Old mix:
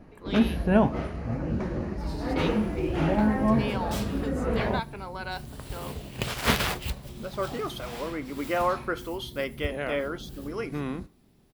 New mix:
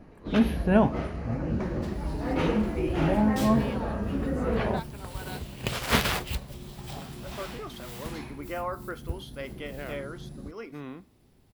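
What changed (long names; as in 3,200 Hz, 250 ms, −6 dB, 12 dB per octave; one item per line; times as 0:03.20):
speech −7.5 dB
second sound: entry −0.55 s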